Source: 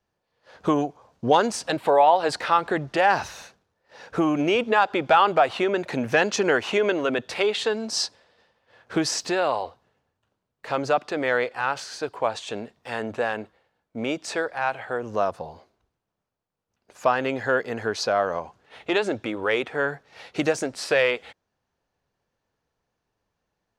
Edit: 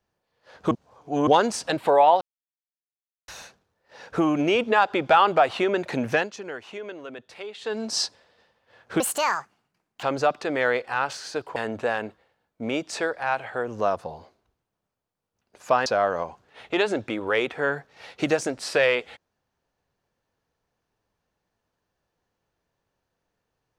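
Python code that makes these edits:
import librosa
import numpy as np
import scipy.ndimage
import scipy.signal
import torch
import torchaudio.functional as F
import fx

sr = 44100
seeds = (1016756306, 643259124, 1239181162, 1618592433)

y = fx.edit(x, sr, fx.reverse_span(start_s=0.71, length_s=0.56),
    fx.silence(start_s=2.21, length_s=1.07),
    fx.fade_down_up(start_s=6.11, length_s=1.69, db=-14.5, fade_s=0.19),
    fx.speed_span(start_s=9.0, length_s=1.7, speed=1.65),
    fx.cut(start_s=12.23, length_s=0.68),
    fx.cut(start_s=17.21, length_s=0.81), tone=tone)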